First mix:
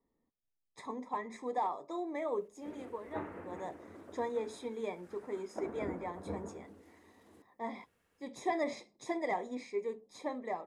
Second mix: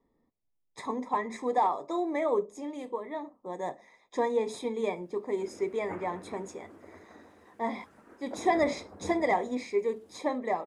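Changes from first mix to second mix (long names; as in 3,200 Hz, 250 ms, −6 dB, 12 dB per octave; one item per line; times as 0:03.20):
speech +8.0 dB
background: entry +2.75 s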